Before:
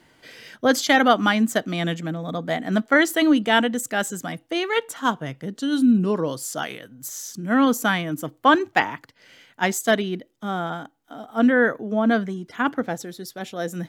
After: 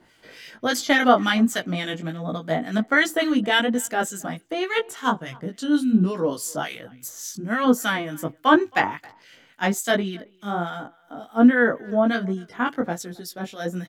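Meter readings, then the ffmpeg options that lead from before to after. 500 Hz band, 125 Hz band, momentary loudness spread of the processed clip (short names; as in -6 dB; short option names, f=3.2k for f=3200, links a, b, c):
-1.0 dB, -0.5 dB, 15 LU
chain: -filter_complex "[0:a]flanger=delay=16:depth=4.4:speed=1.3,acrossover=split=1500[a][b];[a]aeval=exprs='val(0)*(1-0.7/2+0.7/2*cos(2*PI*3.5*n/s))':c=same[c];[b]aeval=exprs='val(0)*(1-0.7/2-0.7/2*cos(2*PI*3.5*n/s))':c=same[d];[c][d]amix=inputs=2:normalize=0,asplit=2[e][f];[f]adelay=270,highpass=300,lowpass=3.4k,asoftclip=type=hard:threshold=-16.5dB,volume=-25dB[g];[e][g]amix=inputs=2:normalize=0,volume=5.5dB"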